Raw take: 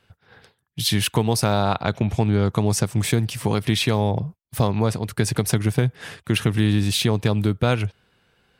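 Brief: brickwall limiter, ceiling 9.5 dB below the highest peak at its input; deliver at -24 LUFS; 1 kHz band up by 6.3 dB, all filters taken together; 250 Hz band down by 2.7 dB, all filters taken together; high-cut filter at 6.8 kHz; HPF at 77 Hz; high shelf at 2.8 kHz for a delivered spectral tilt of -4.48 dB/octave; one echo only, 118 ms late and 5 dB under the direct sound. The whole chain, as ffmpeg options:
-af "highpass=77,lowpass=6800,equalizer=f=250:t=o:g=-4,equalizer=f=1000:t=o:g=8,highshelf=f=2800:g=4,alimiter=limit=0.299:level=0:latency=1,aecho=1:1:118:0.562,volume=0.891"

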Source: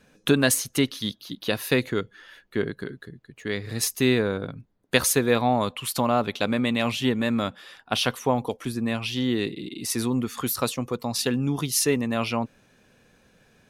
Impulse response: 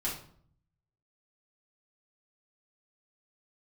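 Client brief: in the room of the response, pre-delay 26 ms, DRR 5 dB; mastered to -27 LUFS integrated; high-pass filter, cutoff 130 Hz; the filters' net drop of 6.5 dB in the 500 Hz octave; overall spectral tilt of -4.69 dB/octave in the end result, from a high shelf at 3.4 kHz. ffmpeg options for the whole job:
-filter_complex "[0:a]highpass=130,equalizer=f=500:t=o:g=-8,highshelf=f=3400:g=-8.5,asplit=2[s0][s1];[1:a]atrim=start_sample=2205,adelay=26[s2];[s1][s2]afir=irnorm=-1:irlink=0,volume=0.335[s3];[s0][s3]amix=inputs=2:normalize=0,volume=1.06"

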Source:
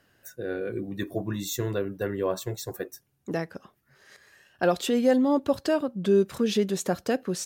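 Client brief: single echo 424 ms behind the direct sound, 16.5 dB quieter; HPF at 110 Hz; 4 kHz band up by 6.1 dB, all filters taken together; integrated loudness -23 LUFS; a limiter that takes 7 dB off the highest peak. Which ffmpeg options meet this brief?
-af "highpass=110,equalizer=f=4000:t=o:g=7.5,alimiter=limit=0.133:level=0:latency=1,aecho=1:1:424:0.15,volume=2"

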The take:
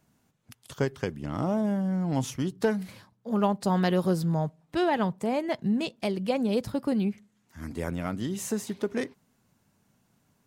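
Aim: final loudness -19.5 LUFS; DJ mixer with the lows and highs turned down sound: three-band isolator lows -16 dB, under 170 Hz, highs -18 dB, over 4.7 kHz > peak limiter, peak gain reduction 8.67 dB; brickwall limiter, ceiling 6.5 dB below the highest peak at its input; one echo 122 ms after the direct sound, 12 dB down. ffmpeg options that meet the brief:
-filter_complex "[0:a]alimiter=limit=0.106:level=0:latency=1,acrossover=split=170 4700:gain=0.158 1 0.126[s0][s1][s2];[s0][s1][s2]amix=inputs=3:normalize=0,aecho=1:1:122:0.251,volume=5.31,alimiter=limit=0.355:level=0:latency=1"

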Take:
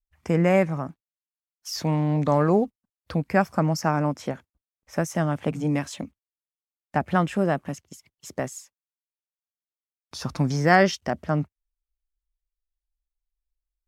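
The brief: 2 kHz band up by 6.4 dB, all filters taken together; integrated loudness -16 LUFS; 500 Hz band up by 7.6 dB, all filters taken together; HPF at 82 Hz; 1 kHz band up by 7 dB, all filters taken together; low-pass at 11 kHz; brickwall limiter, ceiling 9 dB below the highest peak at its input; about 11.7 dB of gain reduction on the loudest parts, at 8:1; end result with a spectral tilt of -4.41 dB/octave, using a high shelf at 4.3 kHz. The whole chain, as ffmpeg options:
-af "highpass=82,lowpass=11000,equalizer=f=500:t=o:g=7.5,equalizer=f=1000:t=o:g=5.5,equalizer=f=2000:t=o:g=7,highshelf=f=4300:g=-9,acompressor=threshold=0.112:ratio=8,volume=4.22,alimiter=limit=0.841:level=0:latency=1"

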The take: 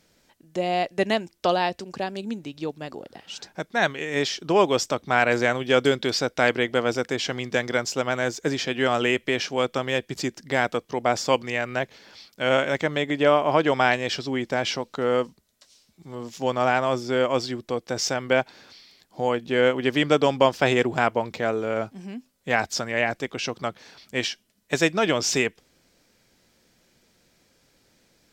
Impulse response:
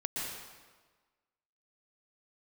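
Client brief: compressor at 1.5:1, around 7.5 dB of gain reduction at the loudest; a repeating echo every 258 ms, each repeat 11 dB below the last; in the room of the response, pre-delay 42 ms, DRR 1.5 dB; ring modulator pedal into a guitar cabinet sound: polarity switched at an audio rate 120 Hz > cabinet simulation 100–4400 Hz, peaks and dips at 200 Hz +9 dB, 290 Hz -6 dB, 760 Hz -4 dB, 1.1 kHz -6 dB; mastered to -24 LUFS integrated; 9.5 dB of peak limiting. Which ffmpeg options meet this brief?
-filter_complex "[0:a]acompressor=threshold=0.0178:ratio=1.5,alimiter=limit=0.0891:level=0:latency=1,aecho=1:1:258|516|774:0.282|0.0789|0.0221,asplit=2[s0][s1];[1:a]atrim=start_sample=2205,adelay=42[s2];[s1][s2]afir=irnorm=-1:irlink=0,volume=0.531[s3];[s0][s3]amix=inputs=2:normalize=0,aeval=exprs='val(0)*sgn(sin(2*PI*120*n/s))':c=same,highpass=100,equalizer=f=200:t=q:w=4:g=9,equalizer=f=290:t=q:w=4:g=-6,equalizer=f=760:t=q:w=4:g=-4,equalizer=f=1100:t=q:w=4:g=-6,lowpass=f=4400:w=0.5412,lowpass=f=4400:w=1.3066,volume=2.66"

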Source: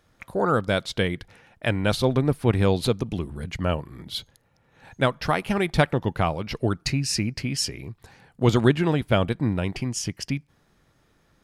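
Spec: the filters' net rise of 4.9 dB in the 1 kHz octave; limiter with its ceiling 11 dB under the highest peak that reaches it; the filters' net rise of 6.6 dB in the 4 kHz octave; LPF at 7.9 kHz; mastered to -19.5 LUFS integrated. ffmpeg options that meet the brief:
-af "lowpass=7900,equalizer=f=1000:t=o:g=6,equalizer=f=4000:t=o:g=8.5,volume=2,alimiter=limit=0.473:level=0:latency=1"

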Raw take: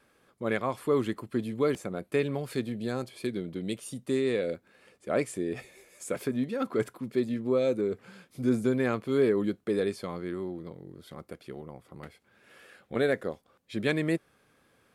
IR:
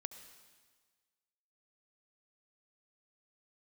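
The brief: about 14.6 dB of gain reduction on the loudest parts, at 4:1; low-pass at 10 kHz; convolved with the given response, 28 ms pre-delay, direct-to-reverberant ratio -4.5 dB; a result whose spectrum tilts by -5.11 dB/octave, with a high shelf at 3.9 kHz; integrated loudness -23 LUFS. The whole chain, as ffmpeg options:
-filter_complex "[0:a]lowpass=10000,highshelf=f=3900:g=5.5,acompressor=threshold=0.0112:ratio=4,asplit=2[s0][s1];[1:a]atrim=start_sample=2205,adelay=28[s2];[s1][s2]afir=irnorm=-1:irlink=0,volume=2.51[s3];[s0][s3]amix=inputs=2:normalize=0,volume=4.73"

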